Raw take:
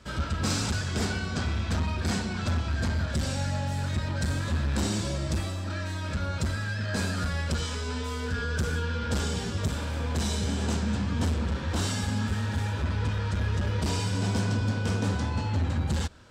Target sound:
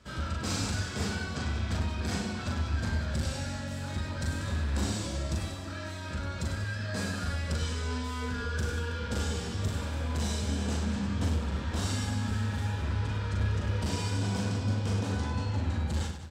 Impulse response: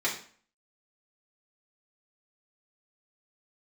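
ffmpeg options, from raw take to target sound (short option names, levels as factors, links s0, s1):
-af "aecho=1:1:40|100|190|325|527.5:0.631|0.398|0.251|0.158|0.1,volume=0.531"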